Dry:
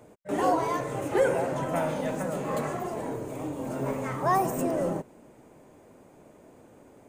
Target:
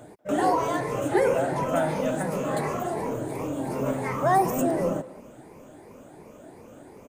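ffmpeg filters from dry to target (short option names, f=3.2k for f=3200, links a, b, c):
-filter_complex "[0:a]afftfilt=real='re*pow(10,9/40*sin(2*PI*(0.84*log(max(b,1)*sr/1024/100)/log(2)-(2.8)*(pts-256)/sr)))':imag='im*pow(10,9/40*sin(2*PI*(0.84*log(max(b,1)*sr/1024/100)/log(2)-(2.8)*(pts-256)/sr)))':win_size=1024:overlap=0.75,asplit=2[a][b];[b]acompressor=threshold=-36dB:ratio=6,volume=-1dB[c];[a][c]amix=inputs=2:normalize=0,asplit=2[d][e];[e]adelay=190,highpass=300,lowpass=3.4k,asoftclip=type=hard:threshold=-19.5dB,volume=-17dB[f];[d][f]amix=inputs=2:normalize=0"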